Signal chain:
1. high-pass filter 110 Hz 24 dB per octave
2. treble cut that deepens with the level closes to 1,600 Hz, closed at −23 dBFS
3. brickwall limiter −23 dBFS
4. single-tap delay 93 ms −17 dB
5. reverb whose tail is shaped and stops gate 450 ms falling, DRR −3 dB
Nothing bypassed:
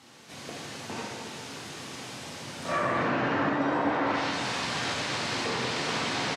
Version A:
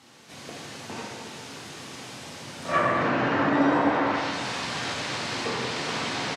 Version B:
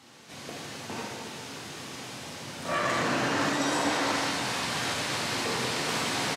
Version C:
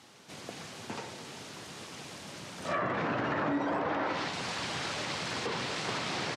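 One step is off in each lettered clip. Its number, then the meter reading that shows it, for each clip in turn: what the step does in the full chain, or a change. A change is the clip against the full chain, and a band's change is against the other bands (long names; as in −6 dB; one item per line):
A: 3, change in crest factor +2.5 dB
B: 2, 8 kHz band +5.5 dB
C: 5, change in integrated loudness −4.5 LU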